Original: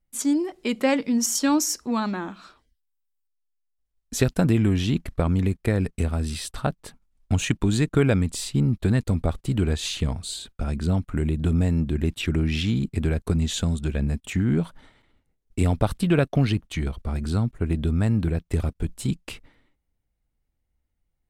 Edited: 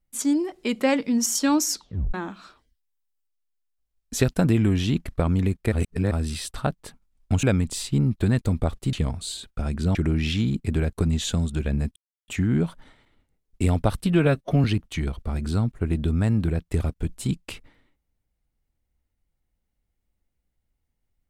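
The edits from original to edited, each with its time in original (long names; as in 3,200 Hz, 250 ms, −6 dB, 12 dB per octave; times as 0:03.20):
0:01.69: tape stop 0.45 s
0:05.72–0:06.11: reverse
0:07.43–0:08.05: remove
0:09.55–0:09.95: remove
0:10.97–0:12.24: remove
0:14.25: splice in silence 0.32 s
0:16.09–0:16.44: time-stretch 1.5×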